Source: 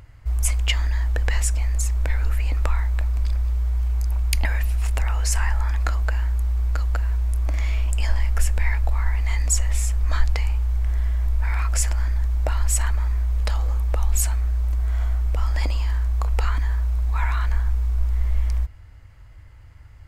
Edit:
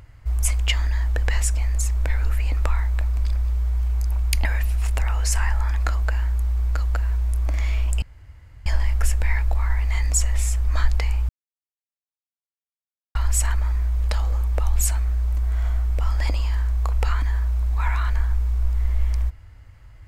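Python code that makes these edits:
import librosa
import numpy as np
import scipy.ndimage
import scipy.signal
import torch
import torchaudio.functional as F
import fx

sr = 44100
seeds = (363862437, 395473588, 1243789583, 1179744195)

y = fx.edit(x, sr, fx.insert_room_tone(at_s=8.02, length_s=0.64),
    fx.silence(start_s=10.65, length_s=1.86), tone=tone)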